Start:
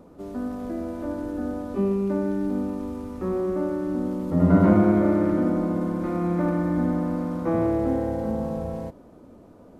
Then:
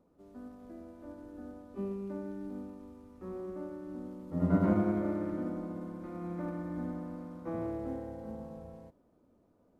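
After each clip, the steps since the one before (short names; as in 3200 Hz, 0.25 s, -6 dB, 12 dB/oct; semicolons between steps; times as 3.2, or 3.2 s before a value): upward expander 1.5:1, over -33 dBFS; gain -9 dB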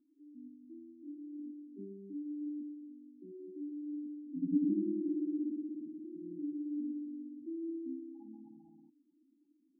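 vowel filter u; spectral gate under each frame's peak -10 dB strong; gain +5 dB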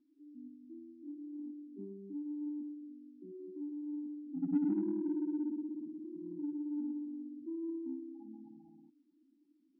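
in parallel at -7 dB: soft clip -34.5 dBFS, distortion -9 dB; on the sum: gain -2 dB; MP3 24 kbps 16000 Hz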